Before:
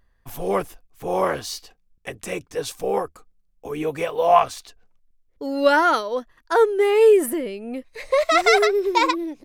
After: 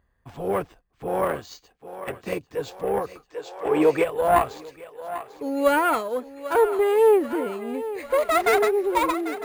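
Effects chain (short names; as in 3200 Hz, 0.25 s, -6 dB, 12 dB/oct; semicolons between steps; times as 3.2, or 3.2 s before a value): one diode to ground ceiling -17.5 dBFS; HPF 45 Hz; thinning echo 0.794 s, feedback 64%, high-pass 340 Hz, level -12.5 dB; careless resampling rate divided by 4×, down filtered, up hold; high shelf 2700 Hz -8.5 dB; 1.25–2.48 transient shaper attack +4 dB, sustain -4 dB; 3.29–4.03 spectral gain 290–8600 Hz +9 dB; 5.49–5.94 notch 5400 Hz, Q 12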